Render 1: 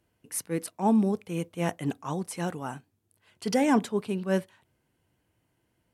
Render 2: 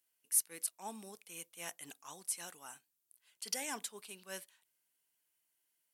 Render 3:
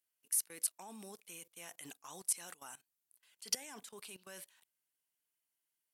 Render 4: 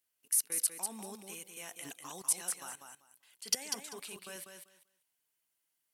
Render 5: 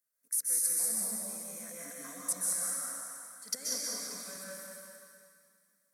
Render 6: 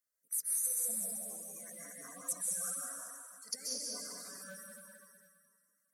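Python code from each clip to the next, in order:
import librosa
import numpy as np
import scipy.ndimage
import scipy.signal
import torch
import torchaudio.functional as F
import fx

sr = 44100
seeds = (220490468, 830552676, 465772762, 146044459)

y1 = np.diff(x, prepend=0.0)
y1 = y1 * 10.0 ** (1.0 / 20.0)
y2 = fx.level_steps(y1, sr, step_db=19)
y2 = y2 * 10.0 ** (7.0 / 20.0)
y3 = fx.echo_feedback(y2, sr, ms=195, feedback_pct=18, wet_db=-6.0)
y3 = y3 * 10.0 ** (4.0 / 20.0)
y4 = fx.fixed_phaser(y3, sr, hz=570.0, stages=8)
y4 = fx.rev_plate(y4, sr, seeds[0], rt60_s=2.3, hf_ratio=0.95, predelay_ms=115, drr_db=-5.5)
y4 = y4 * 10.0 ** (-2.0 / 20.0)
y5 = fx.spec_quant(y4, sr, step_db=30)
y5 = y5 * 10.0 ** (-3.5 / 20.0)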